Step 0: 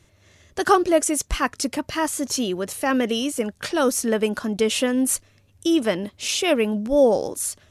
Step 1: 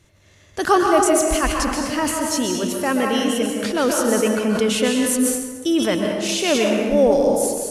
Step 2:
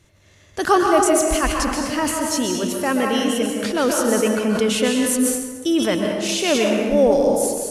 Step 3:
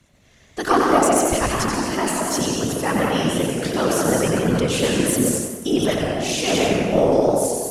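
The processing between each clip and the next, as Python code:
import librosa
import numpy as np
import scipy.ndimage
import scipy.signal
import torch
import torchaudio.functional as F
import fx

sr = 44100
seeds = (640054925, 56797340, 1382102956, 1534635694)

y1 = fx.rev_plate(x, sr, seeds[0], rt60_s=1.6, hf_ratio=0.65, predelay_ms=115, drr_db=0.5)
y1 = fx.sustainer(y1, sr, db_per_s=58.0)
y2 = y1
y3 = fx.whisperise(y2, sr, seeds[1])
y3 = fx.cheby_harmonics(y3, sr, harmonics=(2,), levels_db=(-15,), full_scale_db=-2.0)
y3 = fx.echo_warbled(y3, sr, ms=90, feedback_pct=41, rate_hz=2.8, cents=158, wet_db=-5.0)
y3 = y3 * 10.0 ** (-2.0 / 20.0)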